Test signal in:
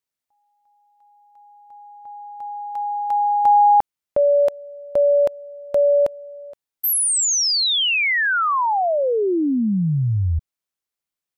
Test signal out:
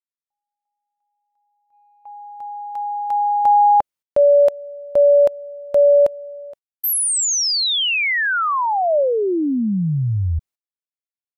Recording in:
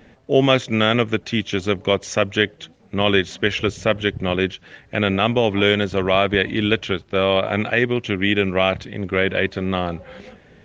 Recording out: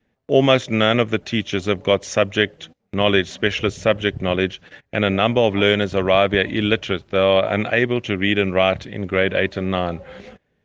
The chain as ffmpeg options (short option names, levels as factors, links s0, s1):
-af "adynamicequalizer=threshold=0.0282:dfrequency=590:dqfactor=4:tfrequency=590:tqfactor=4:attack=5:release=100:ratio=0.375:range=2:mode=boostabove:tftype=bell,agate=range=0.1:threshold=0.00891:ratio=16:release=130:detection=rms"